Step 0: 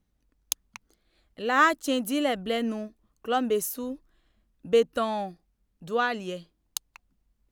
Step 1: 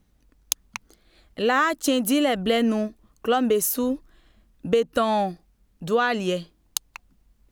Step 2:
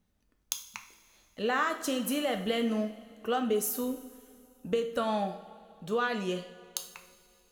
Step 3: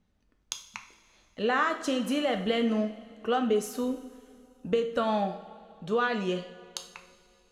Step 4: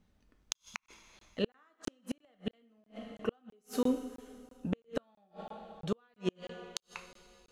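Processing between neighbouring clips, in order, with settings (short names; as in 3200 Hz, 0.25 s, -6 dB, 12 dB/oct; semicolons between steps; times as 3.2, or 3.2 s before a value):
in parallel at +3 dB: limiter -17.5 dBFS, peak gain reduction 9.5 dB; on the sum: compressor 5:1, threshold -20 dBFS, peak gain reduction 9 dB; gain +2.5 dB
low shelf 170 Hz -4 dB; two-slope reverb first 0.5 s, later 2.7 s, from -16 dB, DRR 4.5 dB; gain -9 dB
air absorption 73 m; gain +3 dB
flipped gate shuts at -20 dBFS, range -41 dB; crackling interface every 0.33 s, samples 1024, zero, from 0.53; gain +1.5 dB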